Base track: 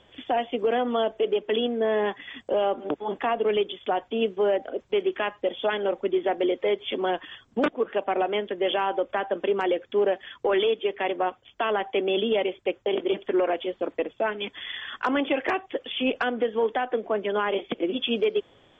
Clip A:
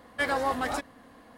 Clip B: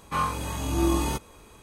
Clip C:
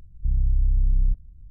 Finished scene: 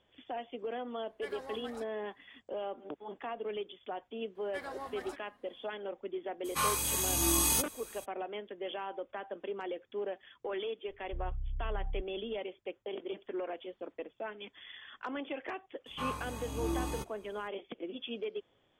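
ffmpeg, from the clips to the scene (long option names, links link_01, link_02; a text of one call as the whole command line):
ffmpeg -i bed.wav -i cue0.wav -i cue1.wav -i cue2.wav -filter_complex "[1:a]asplit=2[link_01][link_02];[2:a]asplit=2[link_03][link_04];[0:a]volume=-14.5dB[link_05];[link_01]agate=range=-33dB:threshold=-50dB:ratio=3:release=100:detection=peak[link_06];[link_03]crystalizer=i=8:c=0[link_07];[link_06]atrim=end=1.37,asetpts=PTS-STARTPTS,volume=-18dB,afade=type=in:duration=0.004:curve=hsin,afade=type=out:start_time=1.366:duration=0.004:curve=hsin,adelay=1030[link_08];[link_02]atrim=end=1.37,asetpts=PTS-STARTPTS,volume=-15.5dB,afade=type=in:duration=0.004:curve=hsin,afade=type=out:start_time=1.366:duration=0.004:curve=hsin,adelay=4350[link_09];[link_07]atrim=end=1.62,asetpts=PTS-STARTPTS,volume=-10dB,afade=type=in:duration=0.02,afade=type=out:start_time=1.6:duration=0.02,adelay=6440[link_10];[3:a]atrim=end=1.5,asetpts=PTS-STARTPTS,volume=-17dB,afade=type=in:duration=0.004:curve=hsin,afade=type=out:start_time=1.496:duration=0.004:curve=hsin,adelay=10880[link_11];[link_04]atrim=end=1.62,asetpts=PTS-STARTPTS,volume=-11dB,afade=type=in:duration=0.004:curve=hsin,afade=type=out:start_time=1.616:duration=0.004:curve=hsin,adelay=15860[link_12];[link_05][link_08][link_09][link_10][link_11][link_12]amix=inputs=6:normalize=0" out.wav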